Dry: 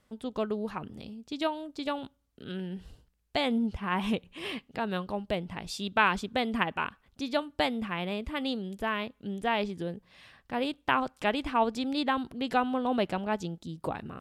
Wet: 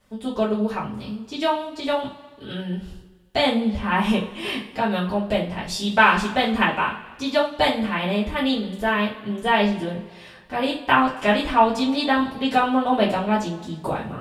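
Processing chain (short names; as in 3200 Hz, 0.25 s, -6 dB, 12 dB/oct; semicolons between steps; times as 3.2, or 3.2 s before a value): two-slope reverb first 0.3 s, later 1.6 s, from -19 dB, DRR -8.5 dB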